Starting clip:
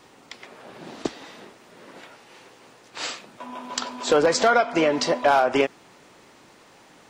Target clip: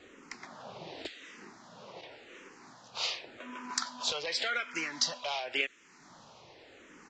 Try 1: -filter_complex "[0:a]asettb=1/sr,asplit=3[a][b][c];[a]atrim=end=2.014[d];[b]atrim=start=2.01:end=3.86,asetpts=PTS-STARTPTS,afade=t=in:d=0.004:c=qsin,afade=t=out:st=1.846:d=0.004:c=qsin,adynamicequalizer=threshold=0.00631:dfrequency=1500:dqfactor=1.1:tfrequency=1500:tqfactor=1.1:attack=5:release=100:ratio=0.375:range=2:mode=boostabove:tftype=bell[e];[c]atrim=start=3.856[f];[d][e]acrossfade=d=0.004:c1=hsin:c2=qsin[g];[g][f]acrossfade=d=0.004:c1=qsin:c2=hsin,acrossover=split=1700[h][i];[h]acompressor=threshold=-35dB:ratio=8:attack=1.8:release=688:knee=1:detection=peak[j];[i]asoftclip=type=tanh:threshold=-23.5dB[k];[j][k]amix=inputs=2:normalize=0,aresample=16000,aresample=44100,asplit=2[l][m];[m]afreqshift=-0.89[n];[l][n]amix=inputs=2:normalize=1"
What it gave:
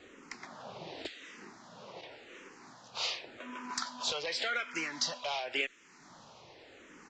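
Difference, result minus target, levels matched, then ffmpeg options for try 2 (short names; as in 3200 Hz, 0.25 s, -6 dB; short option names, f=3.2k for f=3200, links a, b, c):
soft clip: distortion +14 dB
-filter_complex "[0:a]asettb=1/sr,asplit=3[a][b][c];[a]atrim=end=2.014[d];[b]atrim=start=2.01:end=3.86,asetpts=PTS-STARTPTS,afade=t=in:d=0.004:c=qsin,afade=t=out:st=1.846:d=0.004:c=qsin,adynamicequalizer=threshold=0.00631:dfrequency=1500:dqfactor=1.1:tfrequency=1500:tqfactor=1.1:attack=5:release=100:ratio=0.375:range=2:mode=boostabove:tftype=bell[e];[c]atrim=start=3.856[f];[d][e]acrossfade=d=0.004:c1=hsin:c2=qsin[g];[g][f]acrossfade=d=0.004:c1=qsin:c2=hsin,acrossover=split=1700[h][i];[h]acompressor=threshold=-35dB:ratio=8:attack=1.8:release=688:knee=1:detection=peak[j];[i]asoftclip=type=tanh:threshold=-11.5dB[k];[j][k]amix=inputs=2:normalize=0,aresample=16000,aresample=44100,asplit=2[l][m];[m]afreqshift=-0.89[n];[l][n]amix=inputs=2:normalize=1"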